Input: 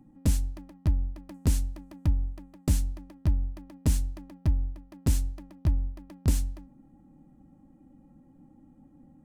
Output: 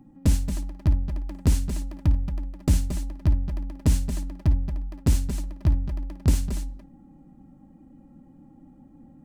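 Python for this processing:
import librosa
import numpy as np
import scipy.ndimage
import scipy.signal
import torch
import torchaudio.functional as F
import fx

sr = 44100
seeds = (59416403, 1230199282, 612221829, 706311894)

y = fx.peak_eq(x, sr, hz=12000.0, db=-4.5, octaves=1.3)
y = fx.echo_multitap(y, sr, ms=(55, 225, 230), db=(-13.0, -10.0, -11.0))
y = F.gain(torch.from_numpy(y), 4.0).numpy()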